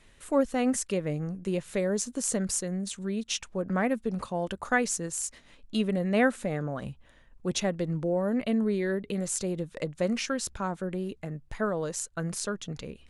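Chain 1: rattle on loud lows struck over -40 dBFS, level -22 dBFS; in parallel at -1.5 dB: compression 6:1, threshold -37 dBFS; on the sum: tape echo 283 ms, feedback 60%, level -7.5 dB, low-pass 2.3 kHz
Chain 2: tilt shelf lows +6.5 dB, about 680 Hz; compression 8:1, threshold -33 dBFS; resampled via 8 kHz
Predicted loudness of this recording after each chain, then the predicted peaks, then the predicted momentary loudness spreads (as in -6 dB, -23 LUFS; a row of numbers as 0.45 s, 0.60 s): -27.0 LUFS, -38.0 LUFS; -10.0 dBFS, -21.5 dBFS; 6 LU, 5 LU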